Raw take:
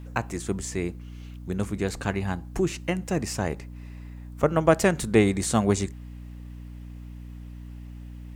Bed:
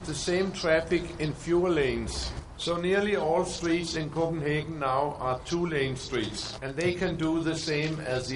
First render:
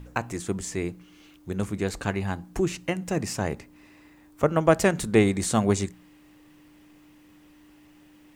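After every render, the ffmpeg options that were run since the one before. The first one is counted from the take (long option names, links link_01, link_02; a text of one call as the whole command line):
ffmpeg -i in.wav -af "bandreject=frequency=60:width_type=h:width=4,bandreject=frequency=120:width_type=h:width=4,bandreject=frequency=180:width_type=h:width=4,bandreject=frequency=240:width_type=h:width=4" out.wav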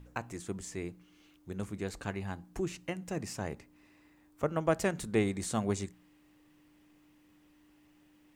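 ffmpeg -i in.wav -af "volume=-9.5dB" out.wav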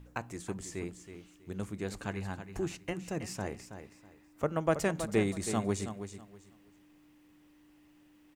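ffmpeg -i in.wav -af "aecho=1:1:323|646|969:0.316|0.0727|0.0167" out.wav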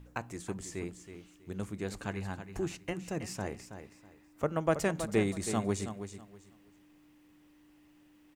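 ffmpeg -i in.wav -af anull out.wav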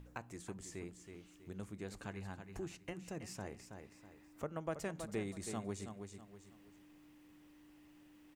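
ffmpeg -i in.wav -af "acompressor=threshold=-58dB:ratio=1.5" out.wav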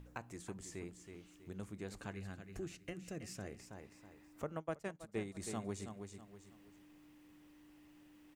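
ffmpeg -i in.wav -filter_complex "[0:a]asettb=1/sr,asplit=3[link_01][link_02][link_03];[link_01]atrim=end=2.144[link_04];[link_02]atrim=start=2.14:end=3.59,asetpts=PTS-STARTPTS,afade=type=in:duration=0.004:curve=qsin,afade=type=out:start_time=1.446:duration=0.004:curve=qsin,equalizer=frequency=910:width_type=o:width=0.39:gain=-13.5[link_05];[link_03]atrim=start=3.586[link_06];[link_04][link_05]acrossfade=duration=0.004:curve1=hsin:curve2=qsin[link_07];[link_07][link_06]acrossfade=duration=0.004:curve1=qsin:curve2=hsin,asplit=3[link_08][link_09][link_10];[link_08]afade=type=out:start_time=4.59:duration=0.02[link_11];[link_09]agate=range=-33dB:threshold=-38dB:ratio=3:release=100:detection=peak,afade=type=in:start_time=4.59:duration=0.02,afade=type=out:start_time=5.34:duration=0.02[link_12];[link_10]afade=type=in:start_time=5.34:duration=0.02[link_13];[link_11][link_12][link_13]amix=inputs=3:normalize=0" out.wav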